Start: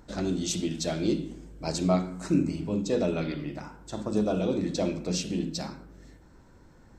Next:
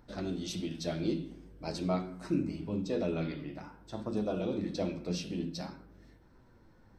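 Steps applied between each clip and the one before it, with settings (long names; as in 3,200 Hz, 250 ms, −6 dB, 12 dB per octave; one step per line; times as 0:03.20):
parametric band 7,200 Hz −15 dB 0.35 octaves
flanger 0.47 Hz, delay 7.8 ms, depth 4.6 ms, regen +62%
level −1.5 dB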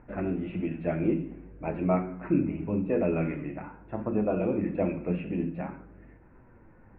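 Chebyshev low-pass filter 2,600 Hz, order 6
level +6.5 dB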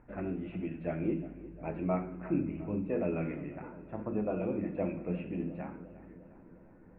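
feedback echo with a low-pass in the loop 354 ms, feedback 67%, low-pass 2,300 Hz, level −16 dB
level −6 dB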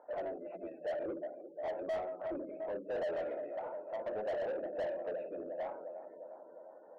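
gate on every frequency bin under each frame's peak −30 dB strong
four-pole ladder band-pass 670 Hz, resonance 65%
mid-hump overdrive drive 29 dB, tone 1,000 Hz, clips at −26.5 dBFS
level −1.5 dB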